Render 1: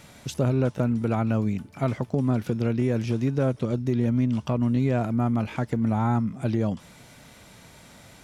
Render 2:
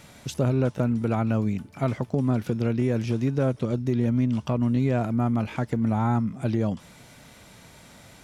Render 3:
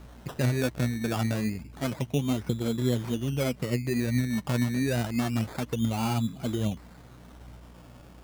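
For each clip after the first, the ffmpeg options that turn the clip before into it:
-af anull
-af "aeval=exprs='val(0)+0.00631*(sin(2*PI*60*n/s)+sin(2*PI*2*60*n/s)/2+sin(2*PI*3*60*n/s)/3+sin(2*PI*4*60*n/s)/4+sin(2*PI*5*60*n/s)/5)':c=same,flanger=delay=0.3:depth=8.3:regen=33:speed=1.2:shape=triangular,acrusher=samples=17:mix=1:aa=0.000001:lfo=1:lforange=10.2:lforate=0.28"

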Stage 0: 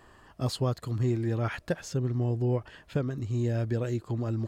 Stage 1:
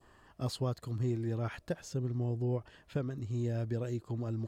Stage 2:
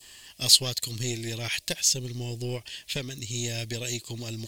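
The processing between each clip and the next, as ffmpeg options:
-af "adynamicequalizer=threshold=0.00316:dfrequency=1800:dqfactor=0.79:tfrequency=1800:tqfactor=0.79:attack=5:release=100:ratio=0.375:range=2:mode=cutabove:tftype=bell,volume=0.531"
-af "aeval=exprs='0.075*(cos(1*acos(clip(val(0)/0.075,-1,1)))-cos(1*PI/2))+0.0168*(cos(2*acos(clip(val(0)/0.075,-1,1)))-cos(2*PI/2))+0.000944*(cos(7*acos(clip(val(0)/0.075,-1,1)))-cos(7*PI/2))':c=same,aexciter=amount=12.1:drive=7.7:freq=2100"

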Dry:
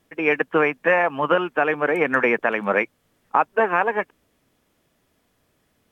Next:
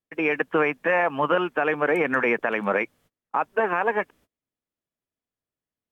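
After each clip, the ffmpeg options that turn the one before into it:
-af "agate=range=0.0447:threshold=0.00282:ratio=16:detection=peak,alimiter=limit=0.266:level=0:latency=1:release=43"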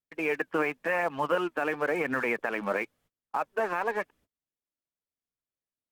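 -filter_complex "[0:a]asplit=2[s0][s1];[s1]acrusher=bits=4:mix=0:aa=0.5,volume=0.376[s2];[s0][s2]amix=inputs=2:normalize=0,flanger=delay=0.1:depth=3.6:regen=71:speed=0.94:shape=triangular,volume=0.596"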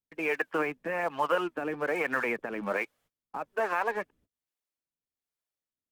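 -filter_complex "[0:a]acrossover=split=430[s0][s1];[s0]aeval=exprs='val(0)*(1-0.7/2+0.7/2*cos(2*PI*1.2*n/s))':c=same[s2];[s1]aeval=exprs='val(0)*(1-0.7/2-0.7/2*cos(2*PI*1.2*n/s))':c=same[s3];[s2][s3]amix=inputs=2:normalize=0,volume=1.26"

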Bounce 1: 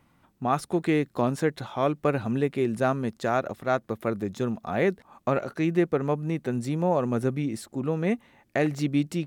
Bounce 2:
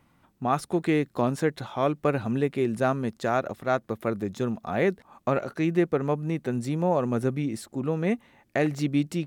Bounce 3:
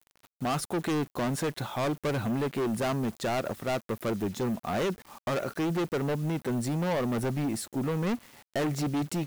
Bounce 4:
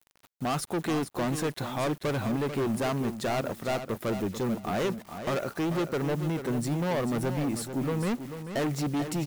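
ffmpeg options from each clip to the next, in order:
-af anull
-af "acrusher=bits=8:mix=0:aa=0.000001,volume=25.1,asoftclip=hard,volume=0.0398,crystalizer=i=0.5:c=0,volume=1.26"
-af "aecho=1:1:440|880|1320:0.335|0.0603|0.0109"

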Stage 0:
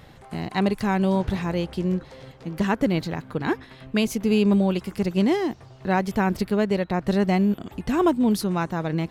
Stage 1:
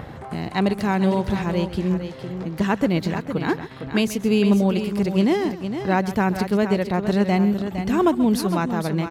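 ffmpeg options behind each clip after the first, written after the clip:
-filter_complex "[0:a]highpass=48,acrossover=split=1900[s0][s1];[s0]acompressor=mode=upward:threshold=0.0447:ratio=2.5[s2];[s2][s1]amix=inputs=2:normalize=0,aecho=1:1:133|460:0.178|0.355,volume=1.19"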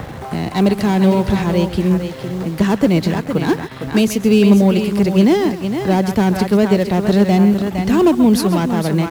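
-filter_complex "[0:a]acrossover=split=250|600|4100[s0][s1][s2][s3];[s1]acrusher=bits=7:mix=0:aa=0.000001[s4];[s2]volume=29.9,asoftclip=hard,volume=0.0335[s5];[s0][s4][s5][s3]amix=inputs=4:normalize=0,volume=2.24"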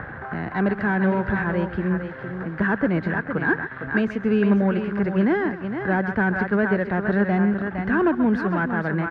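-af "lowpass=f=1600:t=q:w=7,volume=0.376"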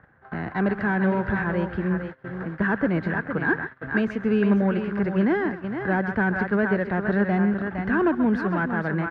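-af "agate=range=0.0794:threshold=0.0282:ratio=16:detection=peak,volume=0.841"

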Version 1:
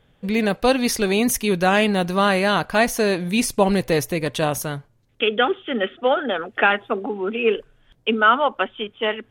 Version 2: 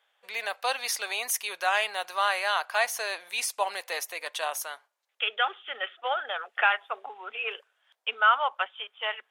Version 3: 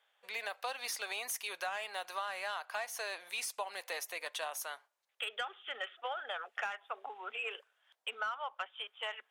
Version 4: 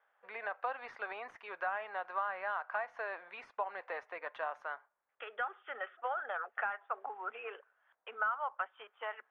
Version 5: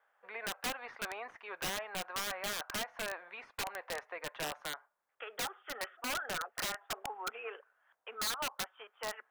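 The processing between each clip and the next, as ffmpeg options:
-af "highpass=f=720:w=0.5412,highpass=f=720:w=1.3066,volume=0.562"
-filter_complex "[0:a]acrossover=split=1500[s0][s1];[s1]asoftclip=type=tanh:threshold=0.0631[s2];[s0][s2]amix=inputs=2:normalize=0,acompressor=threshold=0.0251:ratio=6,volume=0.668"
-af "lowpass=f=1500:t=q:w=1.6,aemphasis=mode=reproduction:type=75kf,volume=1.12"
-af "aeval=exprs='(mod(35.5*val(0)+1,2)-1)/35.5':c=same,volume=1.12"

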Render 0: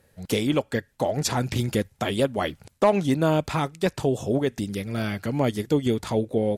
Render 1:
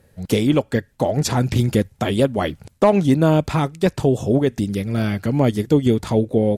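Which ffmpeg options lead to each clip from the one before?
-af "lowshelf=f=460:g=6.5,volume=1.26"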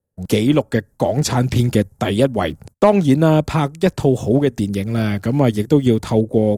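-filter_complex "[0:a]agate=range=0.0501:threshold=0.00794:ratio=16:detection=peak,acrossover=split=220|1400|6200[s0][s1][s2][s3];[s2]aeval=exprs='val(0)*gte(abs(val(0)),0.00282)':c=same[s4];[s0][s1][s4][s3]amix=inputs=4:normalize=0,volume=1.26"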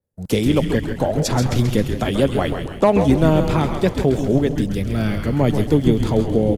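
-filter_complex "[0:a]asplit=2[s0][s1];[s1]aecho=0:1:163|326|489|652:0.237|0.0949|0.0379|0.0152[s2];[s0][s2]amix=inputs=2:normalize=0,adynamicequalizer=threshold=0.00398:dfrequency=8400:dqfactor=1.6:tfrequency=8400:tqfactor=1.6:attack=5:release=100:ratio=0.375:range=2:mode=cutabove:tftype=bell,asplit=2[s3][s4];[s4]asplit=7[s5][s6][s7][s8][s9][s10][s11];[s5]adelay=133,afreqshift=-130,volume=0.447[s12];[s6]adelay=266,afreqshift=-260,volume=0.254[s13];[s7]adelay=399,afreqshift=-390,volume=0.145[s14];[s8]adelay=532,afreqshift=-520,volume=0.0832[s15];[s9]adelay=665,afreqshift=-650,volume=0.0473[s16];[s10]adelay=798,afreqshift=-780,volume=0.0269[s17];[s11]adelay=931,afreqshift=-910,volume=0.0153[s18];[s12][s13][s14][s15][s16][s17][s18]amix=inputs=7:normalize=0[s19];[s3][s19]amix=inputs=2:normalize=0,volume=0.75"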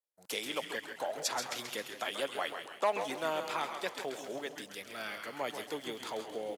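-af "highpass=890,volume=0.398"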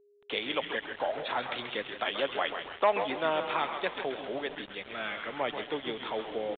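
-af "acrusher=bits=7:mix=0:aa=0.000001,aeval=exprs='val(0)+0.000501*sin(2*PI*410*n/s)':c=same,aresample=8000,aresample=44100,volume=1.78"

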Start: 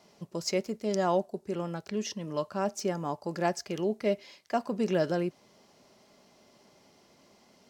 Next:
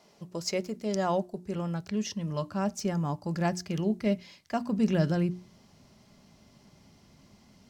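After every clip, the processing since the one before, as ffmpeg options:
-af "bandreject=f=60:t=h:w=6,bandreject=f=120:t=h:w=6,bandreject=f=180:t=h:w=6,bandreject=f=240:t=h:w=6,bandreject=f=300:t=h:w=6,bandreject=f=360:t=h:w=6,asubboost=boost=8:cutoff=160"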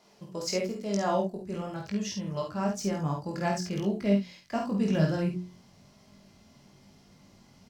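-af "flanger=delay=20:depth=2.1:speed=1,aecho=1:1:50|66:0.596|0.266,volume=1.33"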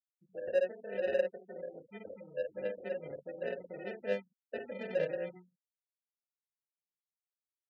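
-filter_complex "[0:a]acrusher=samples=40:mix=1:aa=0.000001,afftfilt=real='re*gte(hypot(re,im),0.0282)':imag='im*gte(hypot(re,im),0.0282)':win_size=1024:overlap=0.75,asplit=3[s0][s1][s2];[s0]bandpass=f=530:t=q:w=8,volume=1[s3];[s1]bandpass=f=1840:t=q:w=8,volume=0.501[s4];[s2]bandpass=f=2480:t=q:w=8,volume=0.355[s5];[s3][s4][s5]amix=inputs=3:normalize=0,volume=1.33"

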